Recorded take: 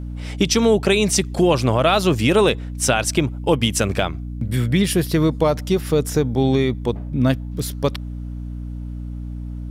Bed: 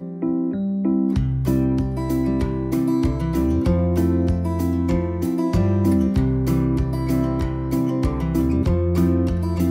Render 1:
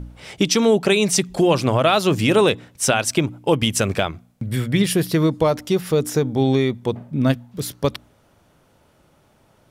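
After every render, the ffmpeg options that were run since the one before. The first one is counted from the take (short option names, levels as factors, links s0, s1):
-af "bandreject=f=60:t=h:w=4,bandreject=f=120:t=h:w=4,bandreject=f=180:t=h:w=4,bandreject=f=240:t=h:w=4,bandreject=f=300:t=h:w=4"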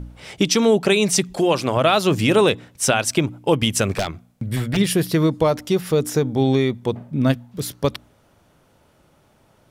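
-filter_complex "[0:a]asettb=1/sr,asplit=3[s0][s1][s2];[s0]atrim=end=1.334[s3];[s1]atrim=start=1.33:end=1.77,asetpts=PTS-STARTPTS,afade=t=in:d=0.004:c=qsin,afade=t=out:st=0.436:d=0.004:c=qsin,lowshelf=f=180:g=-10[s4];[s2]atrim=start=1.766[s5];[s3][s4]acrossfade=d=0.004:c1=hsin:c2=qsin[s6];[s6][s5]acrossfade=d=0.004:c1=qsin:c2=hsin,asettb=1/sr,asplit=3[s7][s8][s9];[s7]atrim=end=3.964[s10];[s8]atrim=start=3.96:end=4.77,asetpts=PTS-STARTPTS,afade=t=in:d=0.004:c=qsin,afade=t=out:st=0.806:d=0.004:c=qsin,aeval=exprs='0.178*(abs(mod(val(0)/0.178+3,4)-2)-1)':c=same[s11];[s9]atrim=start=4.766[s12];[s10][s11]acrossfade=d=0.004:c1=hsin:c2=qsin[s13];[s13][s12]acrossfade=d=0.004:c1=qsin:c2=hsin"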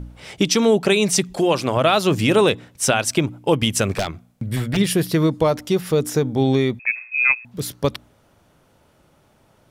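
-filter_complex "[0:a]asettb=1/sr,asplit=3[s0][s1][s2];[s0]atrim=end=6.794[s3];[s1]atrim=start=6.79:end=7.45,asetpts=PTS-STARTPTS,afade=t=in:d=0.004:c=qsin,afade=t=out:st=0.656:d=0.004:c=qsin,lowpass=f=2300:t=q:w=0.5098,lowpass=f=2300:t=q:w=0.6013,lowpass=f=2300:t=q:w=0.9,lowpass=f=2300:t=q:w=2.563,afreqshift=-2700[s4];[s2]atrim=start=7.446[s5];[s3][s4]acrossfade=d=0.004:c1=hsin:c2=qsin[s6];[s6][s5]acrossfade=d=0.004:c1=qsin:c2=hsin"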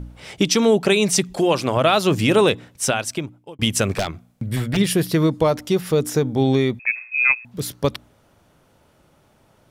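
-filter_complex "[0:a]asplit=2[s0][s1];[s0]atrim=end=3.59,asetpts=PTS-STARTPTS,afade=t=out:st=2.67:d=0.92[s2];[s1]atrim=start=3.59,asetpts=PTS-STARTPTS,afade=t=in:d=0.004:c=hsin[s3];[s2][s3]concat=n=2:v=0:a=1"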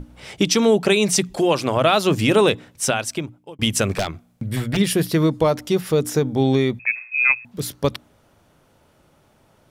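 -af "bandreject=f=60:t=h:w=6,bandreject=f=120:t=h:w=6,bandreject=f=180:t=h:w=6"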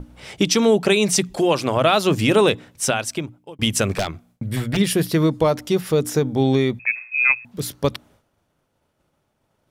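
-af "agate=range=0.0224:threshold=0.00398:ratio=3:detection=peak"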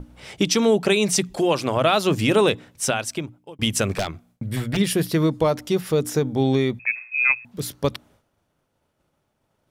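-af "volume=0.794"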